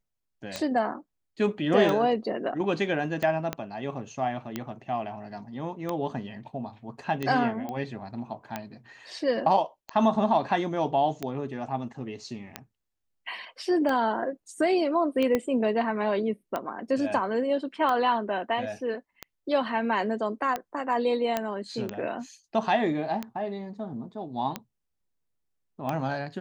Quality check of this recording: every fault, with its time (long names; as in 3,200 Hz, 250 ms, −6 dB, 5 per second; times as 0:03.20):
scratch tick 45 rpm −16 dBFS
0:03.53: click −14 dBFS
0:07.69: click −22 dBFS
0:15.35: click −12 dBFS
0:21.37: click −12 dBFS